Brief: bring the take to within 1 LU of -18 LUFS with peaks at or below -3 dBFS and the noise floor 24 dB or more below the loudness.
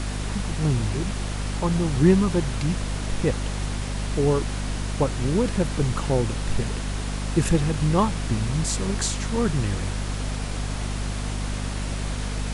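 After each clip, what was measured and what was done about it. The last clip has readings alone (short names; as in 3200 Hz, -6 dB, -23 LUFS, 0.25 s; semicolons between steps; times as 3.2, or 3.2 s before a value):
hum 50 Hz; harmonics up to 250 Hz; hum level -26 dBFS; noise floor -29 dBFS; noise floor target -50 dBFS; loudness -25.5 LUFS; peak -5.5 dBFS; loudness target -18.0 LUFS
-> de-hum 50 Hz, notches 5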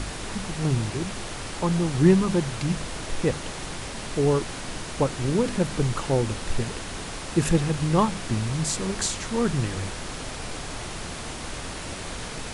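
hum none; noise floor -35 dBFS; noise floor target -51 dBFS
-> noise print and reduce 16 dB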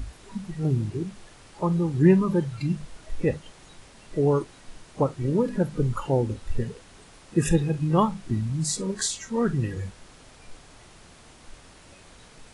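noise floor -51 dBFS; loudness -26.0 LUFS; peak -7.0 dBFS; loudness target -18.0 LUFS
-> gain +8 dB; limiter -3 dBFS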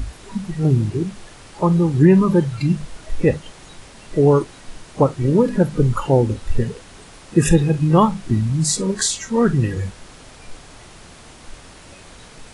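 loudness -18.5 LUFS; peak -3.0 dBFS; noise floor -43 dBFS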